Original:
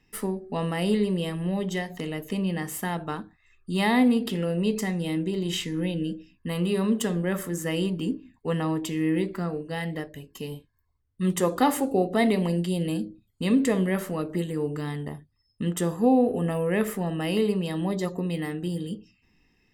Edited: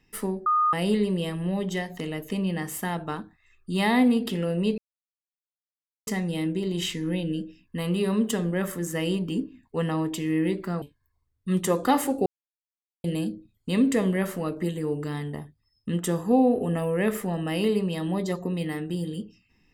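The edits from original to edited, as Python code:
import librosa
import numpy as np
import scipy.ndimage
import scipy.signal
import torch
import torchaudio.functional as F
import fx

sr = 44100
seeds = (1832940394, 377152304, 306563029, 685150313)

y = fx.edit(x, sr, fx.bleep(start_s=0.46, length_s=0.27, hz=1230.0, db=-18.5),
    fx.insert_silence(at_s=4.78, length_s=1.29),
    fx.cut(start_s=9.53, length_s=1.02),
    fx.silence(start_s=11.99, length_s=0.78), tone=tone)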